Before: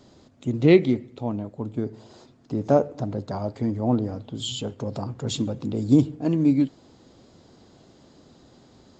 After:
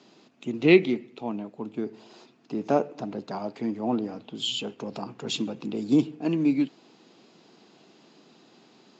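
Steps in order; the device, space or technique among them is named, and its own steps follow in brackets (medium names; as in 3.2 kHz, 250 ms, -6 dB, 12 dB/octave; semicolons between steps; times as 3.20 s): television speaker (cabinet simulation 190–6700 Hz, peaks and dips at 260 Hz -5 dB, 550 Hz -7 dB, 2.6 kHz +9 dB)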